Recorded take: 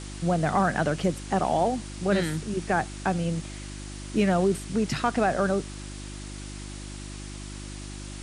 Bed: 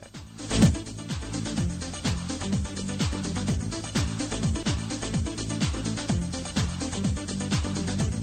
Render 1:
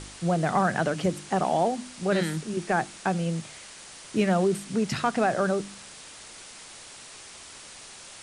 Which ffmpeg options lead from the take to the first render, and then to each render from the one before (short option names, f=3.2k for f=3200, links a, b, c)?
-af "bandreject=f=50:t=h:w=4,bandreject=f=100:t=h:w=4,bandreject=f=150:t=h:w=4,bandreject=f=200:t=h:w=4,bandreject=f=250:t=h:w=4,bandreject=f=300:t=h:w=4,bandreject=f=350:t=h:w=4"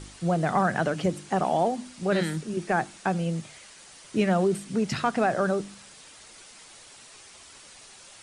-af "afftdn=nr=6:nf=-46"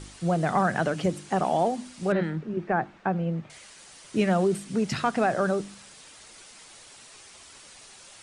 -filter_complex "[0:a]asettb=1/sr,asplit=3[a][b][c];[a]atrim=end=2.124[d];[b]atrim=start=2.12:end=3.5,asetpts=PTS-STARTPTS,afade=t=in:d=0.004:c=qsin,afade=t=out:st=1.376:d=0.004:c=qsin,lowpass=1.8k[e];[c]atrim=start=3.496[f];[d][e]acrossfade=d=0.004:c1=hsin:c2=qsin[g];[g][f]acrossfade=d=0.004:c1=qsin:c2=hsin"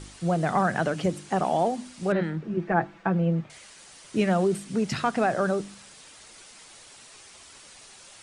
-filter_complex "[0:a]asettb=1/sr,asplit=3[a][b][c];[a]atrim=end=2.434[d];[b]atrim=start=2.43:end=3.44,asetpts=PTS-STARTPTS,afade=t=in:d=0.004:c=qsin,afade=t=out:st=1.006:d=0.004:c=qsin,aecho=1:1:6:0.65,atrim=end_sample=44541[e];[c]atrim=start=3.436[f];[d][e]acrossfade=d=0.004:c1=hsin:c2=qsin[g];[g][f]acrossfade=d=0.004:c1=qsin:c2=hsin"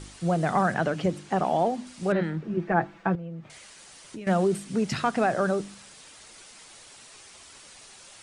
-filter_complex "[0:a]asettb=1/sr,asplit=3[a][b][c];[a]atrim=end=0.744[d];[b]atrim=start=0.74:end=1.87,asetpts=PTS-STARTPTS,afade=t=in:d=0.004:c=qsin,afade=t=out:st=1.126:d=0.004:c=qsin,highshelf=f=8.4k:g=-11.5[e];[c]atrim=start=1.866[f];[d][e]acrossfade=d=0.004:c1=hsin:c2=qsin[g];[g][f]acrossfade=d=0.004:c1=qsin:c2=hsin,asettb=1/sr,asplit=3[h][i][j];[h]atrim=end=3.154[k];[i]atrim=start=3.15:end=4.27,asetpts=PTS-STARTPTS,afade=t=in:d=0.004:c=qsin,afade=t=out:st=1.116:d=0.004:c=qsin,acompressor=threshold=-35dB:ratio=10:attack=3.2:release=140:knee=1:detection=peak[l];[j]atrim=start=4.266[m];[k][l]acrossfade=d=0.004:c1=hsin:c2=qsin[n];[n][m]acrossfade=d=0.004:c1=qsin:c2=hsin"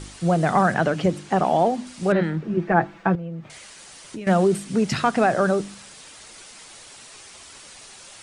-af "volume=5dB"